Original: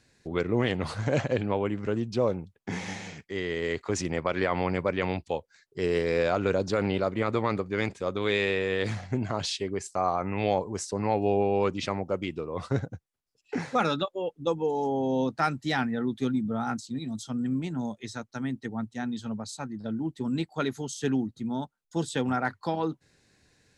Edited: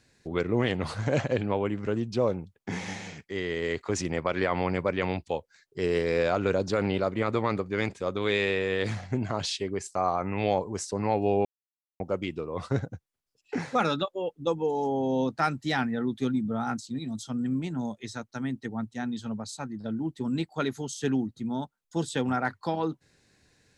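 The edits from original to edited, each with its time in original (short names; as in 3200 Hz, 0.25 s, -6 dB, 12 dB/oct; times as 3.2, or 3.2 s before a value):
11.45–12 mute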